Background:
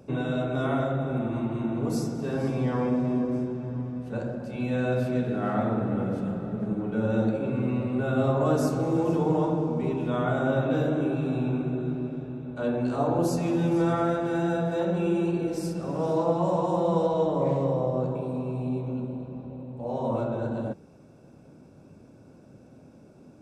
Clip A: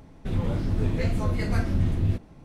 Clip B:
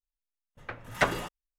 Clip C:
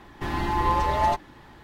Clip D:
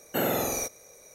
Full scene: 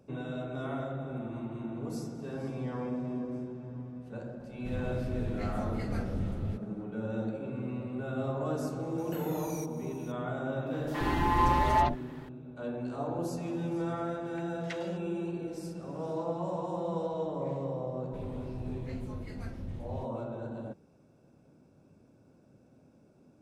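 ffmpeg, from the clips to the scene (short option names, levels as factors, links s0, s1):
-filter_complex "[1:a]asplit=2[s0][s1];[0:a]volume=0.335[s2];[4:a]acompressor=threshold=0.0178:ratio=3:attack=1.4:release=407:knee=1:detection=peak[s3];[3:a]acrossover=split=530|4700[s4][s5][s6];[s5]adelay=70[s7];[s4]adelay=130[s8];[s8][s7][s6]amix=inputs=3:normalize=0[s9];[2:a]asuperpass=centerf=3800:order=4:qfactor=0.76[s10];[s0]atrim=end=2.44,asetpts=PTS-STARTPTS,volume=0.282,afade=t=in:d=0.004:c=hsin,afade=t=out:st=2.436:d=0.004:c=hsin,adelay=4400[s11];[s3]atrim=end=1.14,asetpts=PTS-STARTPTS,volume=0.473,afade=t=in:d=0.004:c=hsin,afade=t=out:st=1.136:d=0.004:c=hsin,adelay=396018S[s12];[s9]atrim=end=1.63,asetpts=PTS-STARTPTS,volume=0.794,afade=t=in:d=0.004:c=hsin,afade=t=out:st=1.626:d=0.004:c=hsin,adelay=470106S[s13];[s10]atrim=end=1.58,asetpts=PTS-STARTPTS,volume=0.282,afade=t=in:d=0.004:c=hsin,afade=t=out:st=1.576:d=0.004:c=hsin,adelay=13690[s14];[s1]atrim=end=2.44,asetpts=PTS-STARTPTS,volume=0.15,afade=t=in:d=0.004:c=hsin,afade=t=out:st=2.436:d=0.004:c=hsin,adelay=17880[s15];[s2][s11][s12][s13][s14][s15]amix=inputs=6:normalize=0"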